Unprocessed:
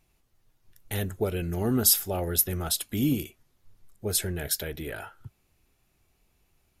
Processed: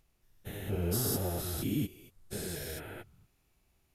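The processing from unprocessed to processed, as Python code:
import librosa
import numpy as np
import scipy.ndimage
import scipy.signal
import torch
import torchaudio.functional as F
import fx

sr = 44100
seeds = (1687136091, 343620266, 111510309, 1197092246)

y = fx.spec_steps(x, sr, hold_ms=400)
y = fx.stretch_vocoder_free(y, sr, factor=0.58)
y = y * 10.0 ** (1.5 / 20.0)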